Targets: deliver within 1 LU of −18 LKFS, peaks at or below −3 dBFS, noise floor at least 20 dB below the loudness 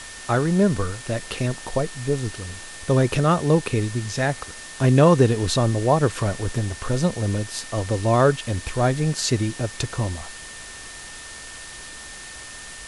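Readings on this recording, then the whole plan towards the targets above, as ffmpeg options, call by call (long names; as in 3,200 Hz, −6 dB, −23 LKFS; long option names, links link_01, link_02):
interfering tone 1,800 Hz; level of the tone −42 dBFS; background noise floor −39 dBFS; target noise floor −42 dBFS; integrated loudness −22.0 LKFS; sample peak −3.5 dBFS; target loudness −18.0 LKFS
→ -af "bandreject=frequency=1800:width=30"
-af "afftdn=noise_reduction=6:noise_floor=-39"
-af "volume=4dB,alimiter=limit=-3dB:level=0:latency=1"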